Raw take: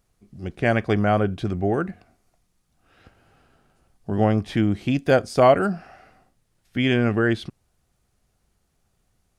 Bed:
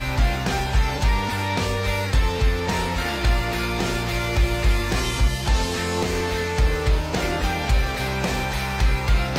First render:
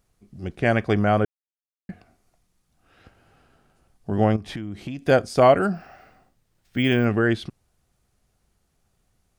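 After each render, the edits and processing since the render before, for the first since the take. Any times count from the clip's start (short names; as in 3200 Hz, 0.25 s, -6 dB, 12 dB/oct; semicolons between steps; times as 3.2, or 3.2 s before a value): 1.25–1.89 mute; 4.36–5.05 compressor 16:1, threshold -27 dBFS; 5.74–7.05 careless resampling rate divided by 2×, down filtered, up hold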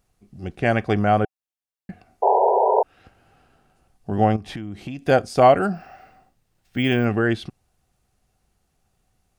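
small resonant body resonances 760/2700 Hz, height 7 dB; 2.22–2.83 painted sound noise 380–1000 Hz -17 dBFS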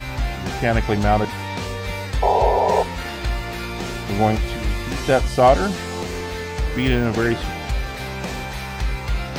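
add bed -4 dB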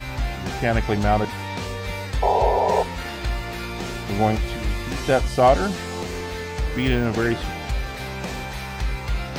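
gain -2 dB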